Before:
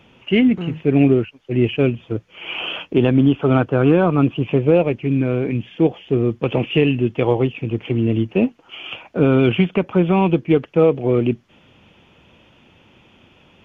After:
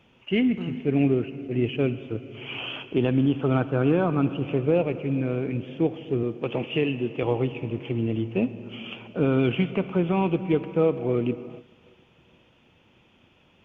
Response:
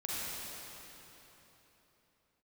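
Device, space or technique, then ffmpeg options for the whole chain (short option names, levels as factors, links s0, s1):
keyed gated reverb: -filter_complex "[0:a]asplit=3[s0][s1][s2];[1:a]atrim=start_sample=2205[s3];[s1][s3]afir=irnorm=-1:irlink=0[s4];[s2]apad=whole_len=601927[s5];[s4][s5]sidechaingate=range=0.0224:threshold=0.00398:ratio=16:detection=peak,volume=0.178[s6];[s0][s6]amix=inputs=2:normalize=0,asettb=1/sr,asplit=3[s7][s8][s9];[s7]atrim=end=6.234[s10];[s8]atrim=start=6.23:end=7.23,asetpts=PTS-STARTPTS,afade=t=in:d=0.004:c=qsin,afade=t=out:st=0.996:d=0.004:c=qsin,highpass=f=170:p=1[s11];[s9]atrim=start=7.226[s12];[s10][s11]acrossfade=d=0.004:c1=hsin:c2=qsin[s13];[s13][s12]acrossfade=d=0.004:c1=qsin:c2=hsin,volume=0.376"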